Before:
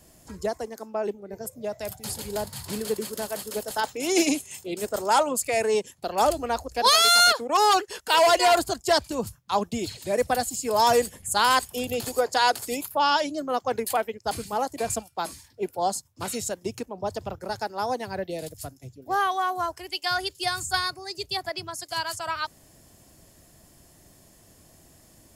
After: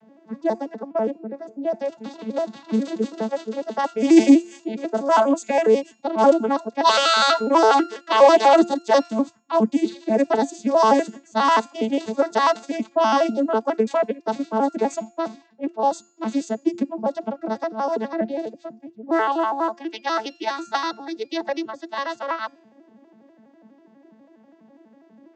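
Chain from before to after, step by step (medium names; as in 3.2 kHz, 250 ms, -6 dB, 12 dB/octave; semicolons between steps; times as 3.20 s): vocoder on a broken chord major triad, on A3, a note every 82 ms; level-controlled noise filter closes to 2.1 kHz, open at -22 dBFS; de-hum 346.1 Hz, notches 36; trim +6 dB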